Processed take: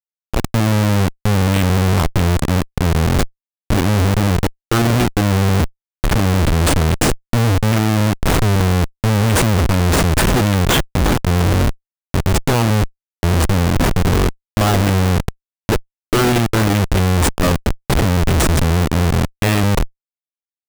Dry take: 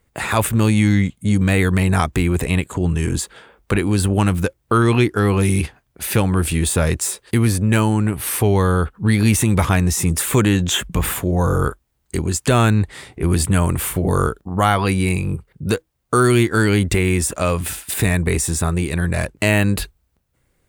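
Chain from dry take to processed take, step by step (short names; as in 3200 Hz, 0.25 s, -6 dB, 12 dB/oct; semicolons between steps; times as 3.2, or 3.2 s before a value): opening faded in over 0.79 s; Schmitt trigger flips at -16.5 dBFS; gain +5 dB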